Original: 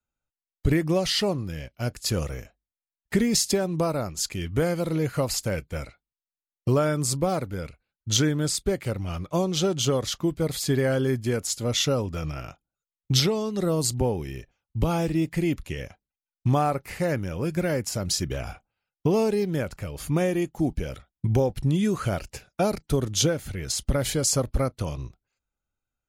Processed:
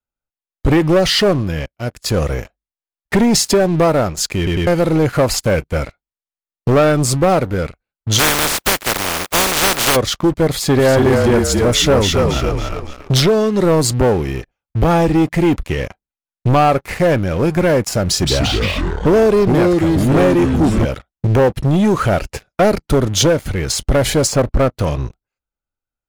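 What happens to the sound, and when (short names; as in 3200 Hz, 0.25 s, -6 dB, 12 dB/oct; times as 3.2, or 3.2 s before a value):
1.66–2.32 fade in, from -15.5 dB
4.37 stutter in place 0.10 s, 3 plays
8.18–9.95 spectral contrast lowered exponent 0.14
10.47–13.22 frequency-shifting echo 0.28 s, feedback 37%, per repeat -33 Hz, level -3.5 dB
18.07–20.85 echoes that change speed 0.161 s, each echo -4 st, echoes 3
21.48–21.98 notch comb 740 Hz
24.27–24.72 high shelf 4800 Hz -11 dB
whole clip: high shelf 2700 Hz -10 dB; sample leveller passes 3; bell 120 Hz -4.5 dB 2.6 oct; gain +5.5 dB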